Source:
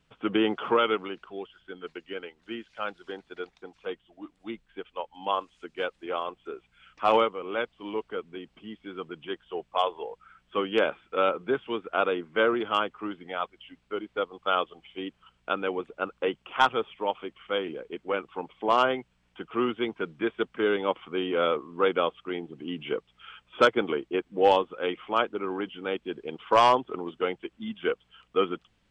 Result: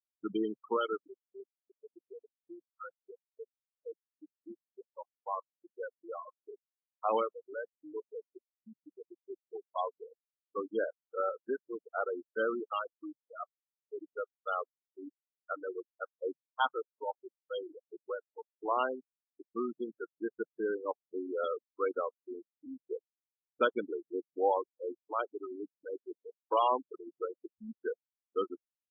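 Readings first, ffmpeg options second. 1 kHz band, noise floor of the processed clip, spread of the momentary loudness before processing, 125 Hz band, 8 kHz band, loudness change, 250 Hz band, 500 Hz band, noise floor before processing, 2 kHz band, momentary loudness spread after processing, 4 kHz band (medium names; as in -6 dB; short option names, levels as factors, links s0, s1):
-9.0 dB, under -85 dBFS, 17 LU, under -15 dB, no reading, -8.5 dB, -9.5 dB, -8.5 dB, -69 dBFS, -11.5 dB, 21 LU, -17.0 dB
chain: -af "afftfilt=real='re*gte(hypot(re,im),0.141)':imag='im*gte(hypot(re,im),0.141)':win_size=1024:overlap=0.75,volume=0.398" -ar 22050 -c:a libvorbis -b:a 48k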